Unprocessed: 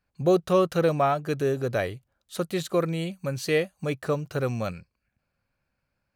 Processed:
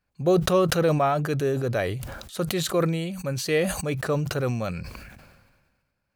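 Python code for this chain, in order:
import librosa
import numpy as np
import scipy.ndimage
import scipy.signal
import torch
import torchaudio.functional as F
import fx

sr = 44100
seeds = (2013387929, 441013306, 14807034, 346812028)

y = fx.sustainer(x, sr, db_per_s=39.0)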